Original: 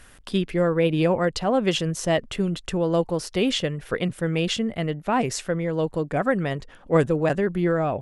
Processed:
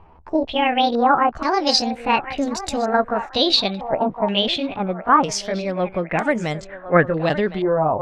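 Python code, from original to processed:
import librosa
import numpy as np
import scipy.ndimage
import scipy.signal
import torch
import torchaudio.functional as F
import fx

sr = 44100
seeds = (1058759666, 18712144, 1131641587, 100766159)

y = fx.pitch_glide(x, sr, semitones=8.5, runs='ending unshifted')
y = fx.echo_banded(y, sr, ms=1061, feedback_pct=43, hz=950.0, wet_db=-11)
y = fx.filter_held_lowpass(y, sr, hz=2.1, low_hz=960.0, high_hz=7100.0)
y = y * librosa.db_to_amplitude(2.5)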